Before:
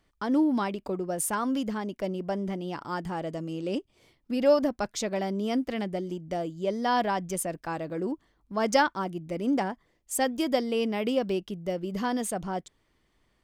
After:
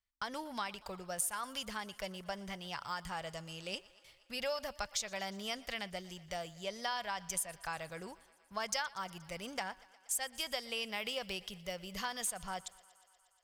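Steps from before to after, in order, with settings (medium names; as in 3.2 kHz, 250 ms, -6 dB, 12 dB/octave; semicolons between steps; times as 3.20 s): gate with hold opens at -51 dBFS; amplifier tone stack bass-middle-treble 10-0-10; compression 4:1, threshold -40 dBFS, peak gain reduction 12 dB; on a send: thinning echo 119 ms, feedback 77%, high-pass 250 Hz, level -22 dB; on the sum: trim +5.5 dB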